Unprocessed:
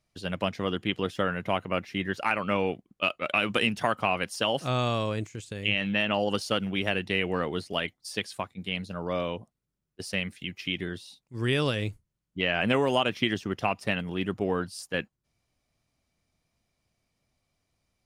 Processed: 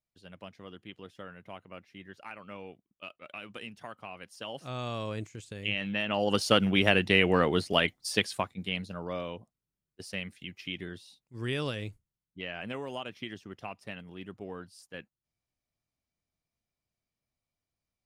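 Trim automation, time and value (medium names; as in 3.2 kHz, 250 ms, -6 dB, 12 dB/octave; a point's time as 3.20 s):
4.12 s -17.5 dB
5.17 s -5 dB
6.06 s -5 dB
6.48 s +4.5 dB
8.19 s +4.5 dB
9.22 s -6.5 dB
11.73 s -6.5 dB
12.70 s -13.5 dB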